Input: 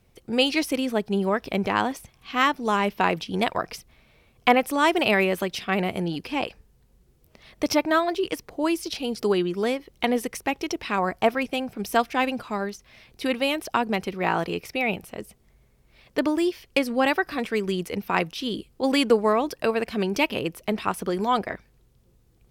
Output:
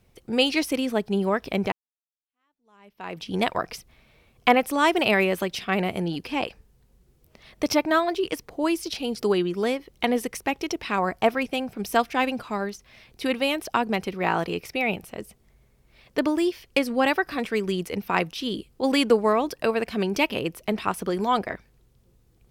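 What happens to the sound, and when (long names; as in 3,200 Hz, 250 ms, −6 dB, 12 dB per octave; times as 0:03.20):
0:01.72–0:03.28: fade in exponential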